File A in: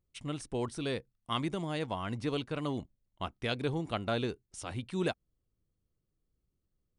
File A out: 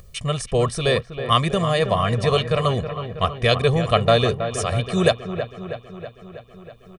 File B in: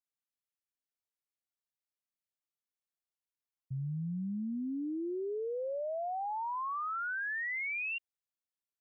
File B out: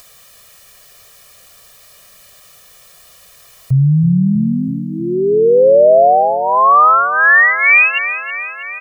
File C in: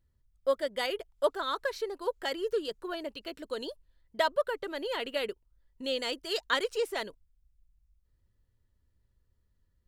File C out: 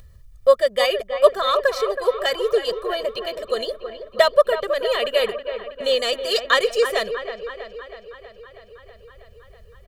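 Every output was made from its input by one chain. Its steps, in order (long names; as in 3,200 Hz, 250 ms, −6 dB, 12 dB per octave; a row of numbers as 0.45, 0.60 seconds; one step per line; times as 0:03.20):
on a send: delay with a low-pass on its return 322 ms, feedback 61%, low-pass 2,500 Hz, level −9.5 dB
on the sum: upward compression, threshold −49 dBFS
comb filter 1.7 ms, depth 93%
normalise the peak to −1.5 dBFS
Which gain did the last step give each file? +13.0, +23.0, +8.5 decibels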